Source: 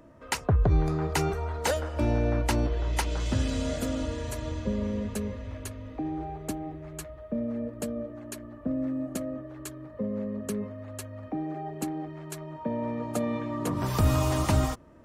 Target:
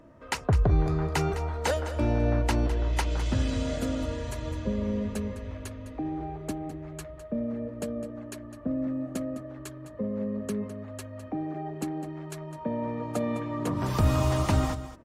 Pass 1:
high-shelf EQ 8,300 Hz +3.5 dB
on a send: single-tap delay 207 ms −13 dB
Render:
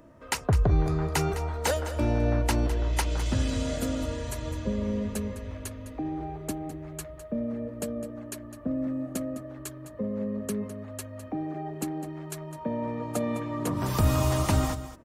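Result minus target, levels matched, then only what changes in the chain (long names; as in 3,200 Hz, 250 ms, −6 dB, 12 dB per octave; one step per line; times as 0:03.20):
8,000 Hz band +5.0 dB
change: high-shelf EQ 8,300 Hz −8 dB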